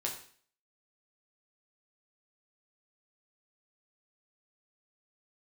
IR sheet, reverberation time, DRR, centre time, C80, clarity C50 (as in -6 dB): 0.50 s, -1.5 dB, 24 ms, 11.0 dB, 7.0 dB